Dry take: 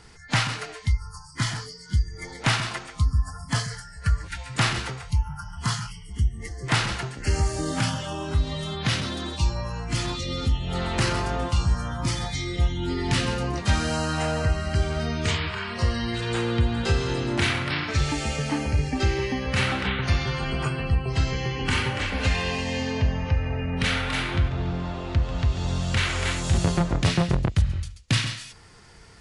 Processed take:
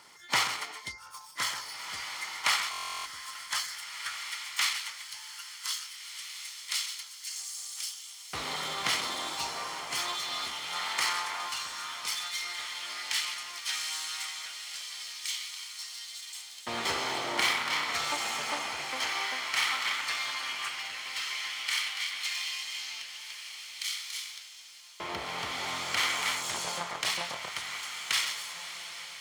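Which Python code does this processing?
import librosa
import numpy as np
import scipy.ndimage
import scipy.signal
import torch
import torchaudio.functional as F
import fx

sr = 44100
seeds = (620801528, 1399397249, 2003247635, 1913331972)

y = fx.lower_of_two(x, sr, delay_ms=0.94)
y = fx.echo_diffused(y, sr, ms=1738, feedback_pct=42, wet_db=-7.0)
y = fx.filter_lfo_highpass(y, sr, shape='saw_up', hz=0.12, low_hz=440.0, high_hz=5900.0, q=0.72)
y = fx.buffer_glitch(y, sr, at_s=(2.71,), block=1024, repeats=14)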